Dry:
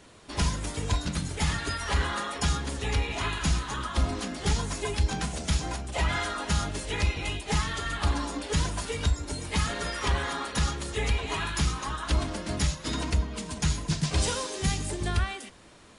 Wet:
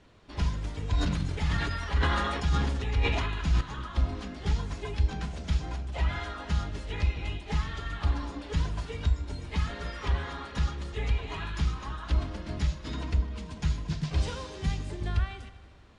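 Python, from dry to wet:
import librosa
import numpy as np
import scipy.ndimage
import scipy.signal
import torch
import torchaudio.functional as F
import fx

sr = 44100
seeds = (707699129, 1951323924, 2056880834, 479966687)

y = scipy.signal.sosfilt(scipy.signal.butter(2, 4400.0, 'lowpass', fs=sr, output='sos'), x)
y = fx.low_shelf(y, sr, hz=120.0, db=9.0)
y = fx.echo_heads(y, sr, ms=77, heads='all three', feedback_pct=53, wet_db=-22.5)
y = fx.sustainer(y, sr, db_per_s=26.0, at=(0.88, 3.61))
y = F.gain(torch.from_numpy(y), -7.0).numpy()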